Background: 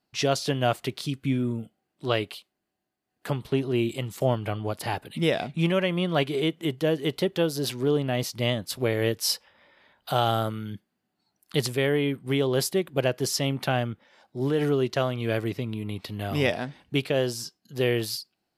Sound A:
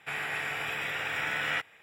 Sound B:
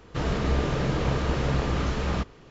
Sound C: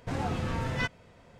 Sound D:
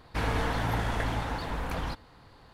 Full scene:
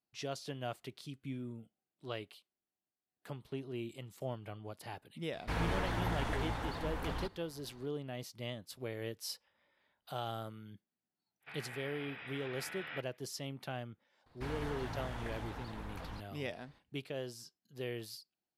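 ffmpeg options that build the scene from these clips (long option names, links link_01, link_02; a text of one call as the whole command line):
ffmpeg -i bed.wav -i cue0.wav -i cue1.wav -i cue2.wav -i cue3.wav -filter_complex "[4:a]asplit=2[link_01][link_02];[0:a]volume=-16.5dB[link_03];[1:a]aresample=11025,aresample=44100[link_04];[link_01]atrim=end=2.53,asetpts=PTS-STARTPTS,volume=-6.5dB,afade=type=in:duration=0.004:curve=hsin,afade=type=out:start_time=2.526:duration=0.004:curve=hsin,adelay=235053S[link_05];[link_04]atrim=end=1.82,asetpts=PTS-STARTPTS,volume=-15dB,afade=type=in:duration=0.05,afade=type=out:start_time=1.77:duration=0.05,adelay=11400[link_06];[link_02]atrim=end=2.53,asetpts=PTS-STARTPTS,volume=-13dB,afade=type=in:duration=0.004:curve=hsin,afade=type=out:start_time=2.526:duration=0.004:curve=hsin,adelay=14260[link_07];[link_03][link_05][link_06][link_07]amix=inputs=4:normalize=0" out.wav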